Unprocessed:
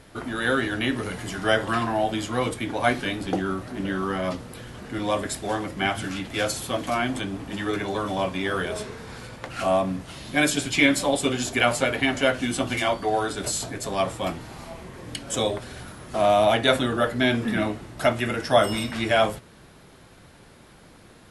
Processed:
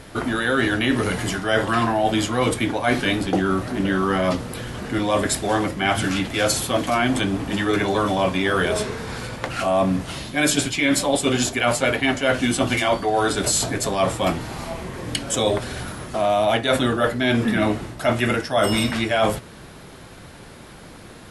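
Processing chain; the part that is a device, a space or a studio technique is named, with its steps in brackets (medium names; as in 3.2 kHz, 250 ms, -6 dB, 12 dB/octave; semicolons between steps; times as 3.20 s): compression on the reversed sound (reverse; compression 12:1, threshold -24 dBFS, peak gain reduction 13 dB; reverse); trim +8.5 dB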